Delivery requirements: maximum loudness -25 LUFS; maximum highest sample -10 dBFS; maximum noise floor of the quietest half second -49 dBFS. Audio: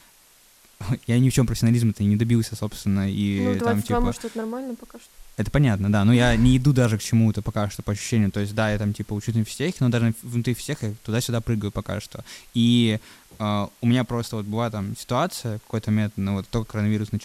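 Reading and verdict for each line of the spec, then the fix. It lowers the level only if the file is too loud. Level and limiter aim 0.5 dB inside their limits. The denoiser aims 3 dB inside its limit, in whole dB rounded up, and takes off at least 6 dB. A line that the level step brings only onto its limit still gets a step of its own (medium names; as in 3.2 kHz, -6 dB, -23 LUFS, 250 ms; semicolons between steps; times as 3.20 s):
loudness -23.5 LUFS: fail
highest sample -6.0 dBFS: fail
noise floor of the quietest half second -55 dBFS: pass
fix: trim -2 dB; peak limiter -10.5 dBFS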